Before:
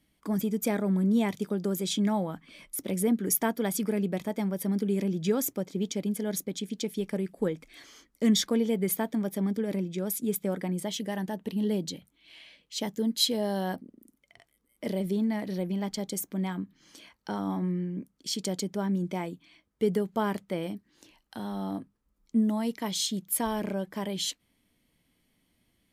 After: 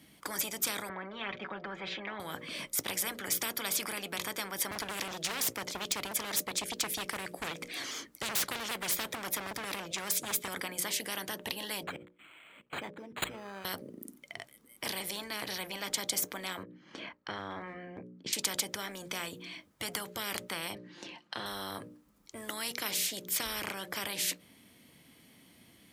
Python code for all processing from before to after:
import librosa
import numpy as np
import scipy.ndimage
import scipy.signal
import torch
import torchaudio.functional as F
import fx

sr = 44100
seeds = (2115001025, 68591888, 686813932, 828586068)

y = fx.chain(x, sr, fx.lowpass(hz=2300.0, slope=24),
    fx.comb(ms=5.3, depth=0.8), at=(0.89, 2.2))
y = fx.chain(y, sr, fx.clip_hard(threshold_db=-28.5),
    fx.vibrato_shape(shape='saw_down', rate_hz=5.0, depth_cents=100.0), at=(4.71, 10.48))
y = fx.chain(y, sr, fx.level_steps(step_db=22),
    fx.resample_linear(factor=8), at=(11.83, 13.65))
y = fx.chain(y, sr, fx.lowpass(hz=2200.0, slope=12),
    fx.transient(attack_db=1, sustain_db=-10), at=(16.63, 18.33))
y = fx.chain(y, sr, fx.bandpass_edges(low_hz=120.0, high_hz=4100.0),
    fx.comb(ms=5.7, depth=0.49), at=(20.75, 21.46))
y = scipy.signal.sosfilt(scipy.signal.butter(2, 110.0, 'highpass', fs=sr, output='sos'), y)
y = fx.hum_notches(y, sr, base_hz=60, count=10)
y = fx.spectral_comp(y, sr, ratio=10.0)